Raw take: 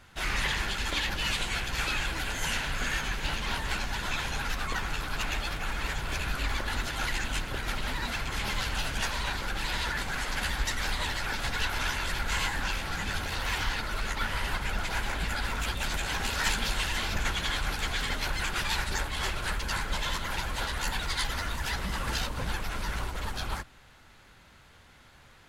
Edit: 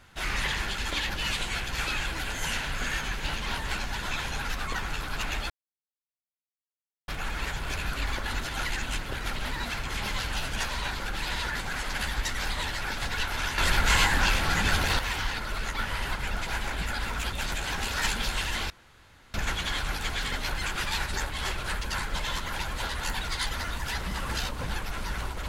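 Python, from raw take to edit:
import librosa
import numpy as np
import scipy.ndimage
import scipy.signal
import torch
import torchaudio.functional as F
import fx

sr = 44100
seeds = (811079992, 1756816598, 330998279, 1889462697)

y = fx.edit(x, sr, fx.insert_silence(at_s=5.5, length_s=1.58),
    fx.clip_gain(start_s=12.0, length_s=1.41, db=7.5),
    fx.insert_room_tone(at_s=17.12, length_s=0.64), tone=tone)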